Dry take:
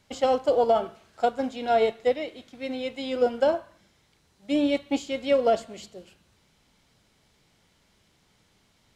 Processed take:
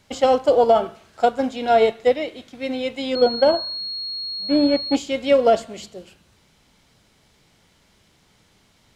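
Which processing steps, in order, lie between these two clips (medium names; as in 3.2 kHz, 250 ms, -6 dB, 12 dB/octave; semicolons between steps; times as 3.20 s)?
3.15–4.95 s: class-D stage that switches slowly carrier 4.3 kHz; trim +6 dB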